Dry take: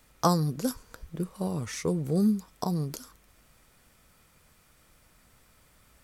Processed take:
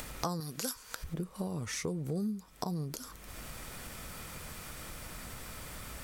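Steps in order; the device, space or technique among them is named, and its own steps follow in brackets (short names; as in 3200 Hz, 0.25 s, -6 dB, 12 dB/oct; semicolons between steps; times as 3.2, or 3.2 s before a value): 0.4–1.04 tilt shelf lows -9 dB, about 680 Hz; upward and downward compression (upward compressor, threshold -31 dBFS; compressor 4:1, threshold -35 dBFS, peak gain reduction 14.5 dB); gain +1 dB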